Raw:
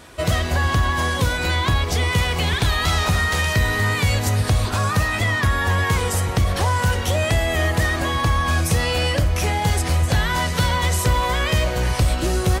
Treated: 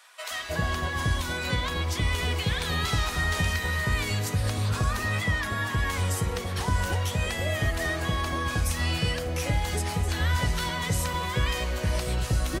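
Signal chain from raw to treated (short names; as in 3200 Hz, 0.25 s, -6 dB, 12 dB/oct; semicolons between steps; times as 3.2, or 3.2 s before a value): flange 0.61 Hz, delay 3.6 ms, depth 3.5 ms, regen -74%; bands offset in time highs, lows 0.31 s, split 790 Hz; gain -2.5 dB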